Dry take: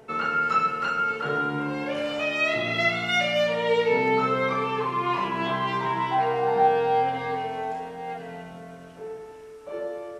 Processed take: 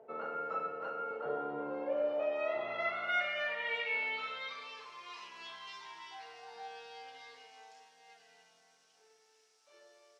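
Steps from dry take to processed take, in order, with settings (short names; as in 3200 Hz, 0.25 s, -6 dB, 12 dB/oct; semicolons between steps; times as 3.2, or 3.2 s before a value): band-pass sweep 590 Hz -> 5400 Hz, 2.11–4.89; dark delay 0.291 s, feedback 59%, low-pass 1100 Hz, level -12 dB; gain -2.5 dB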